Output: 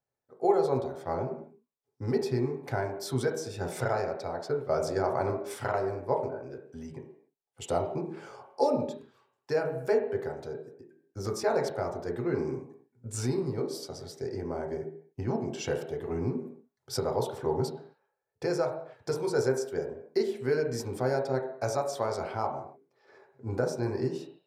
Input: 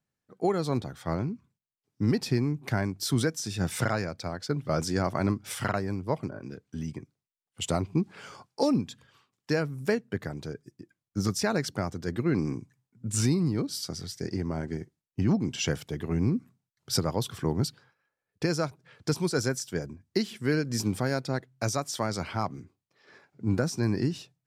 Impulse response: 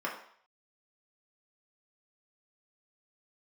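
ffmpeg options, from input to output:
-filter_complex "[0:a]asplit=2[a][b];[b]highpass=f=110:w=0.5412,highpass=f=110:w=1.3066,equalizer=f=180:t=q:w=4:g=-4,equalizer=f=410:t=q:w=4:g=9,equalizer=f=590:t=q:w=4:g=9,equalizer=f=860:t=q:w=4:g=5,equalizer=f=1.2k:t=q:w=4:g=-3,equalizer=f=3k:t=q:w=4:g=7,lowpass=f=4.2k:w=0.5412,lowpass=f=4.2k:w=1.3066[c];[1:a]atrim=start_sample=2205,afade=t=out:st=0.27:d=0.01,atrim=end_sample=12348,asetrate=32634,aresample=44100[d];[c][d]afir=irnorm=-1:irlink=0,volume=-7dB[e];[a][e]amix=inputs=2:normalize=0,volume=-7.5dB"

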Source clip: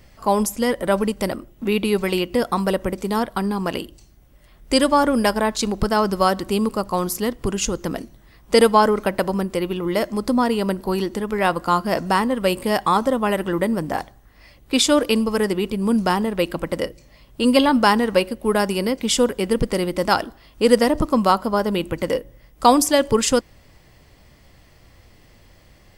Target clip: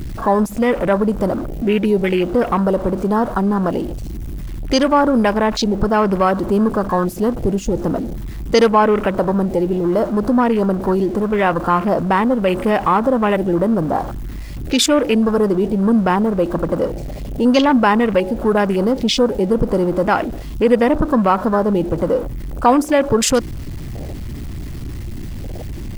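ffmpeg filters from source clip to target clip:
-filter_complex "[0:a]aeval=exprs='val(0)+0.5*0.075*sgn(val(0))':c=same,afwtdn=0.0562,asplit=2[a][b];[b]alimiter=limit=-11.5dB:level=0:latency=1:release=111,volume=-0.5dB[c];[a][c]amix=inputs=2:normalize=0,volume=-2.5dB"

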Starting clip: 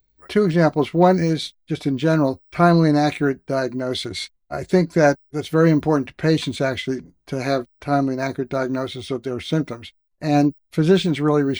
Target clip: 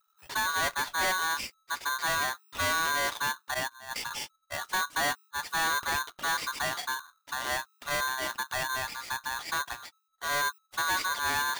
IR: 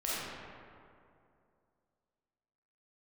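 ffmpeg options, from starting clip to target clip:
-filter_complex "[0:a]asettb=1/sr,asplit=3[a][b][c];[a]atrim=end=3.544[d];[b]atrim=start=3.54:end=3.96,asetpts=PTS-STARTPTS,afade=t=in:d=0.004:c=qsin,afade=t=out:st=0.416:d=0.004:c=qsin,agate=range=-18dB:threshold=-21dB:ratio=16:detection=peak[e];[c]atrim=start=3.956[f];[d][e]acrossfade=d=0.004:c1=hsin:c2=qsin[g];[g][f]acrossfade=d=0.004:c1=qsin:c2=hsin,asoftclip=type=tanh:threshold=-18dB,aeval=exprs='val(0)*sgn(sin(2*PI*1300*n/s))':c=same,volume=-7dB"

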